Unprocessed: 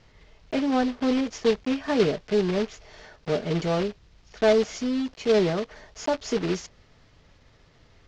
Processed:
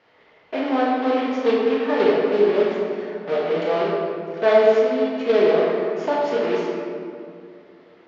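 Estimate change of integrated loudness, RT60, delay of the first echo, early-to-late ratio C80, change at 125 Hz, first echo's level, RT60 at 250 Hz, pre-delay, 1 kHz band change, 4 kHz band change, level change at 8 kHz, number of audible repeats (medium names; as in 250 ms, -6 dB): +5.0 dB, 2.4 s, no echo, 0.5 dB, -6.5 dB, no echo, 3.0 s, 19 ms, +8.5 dB, 0.0 dB, no reading, no echo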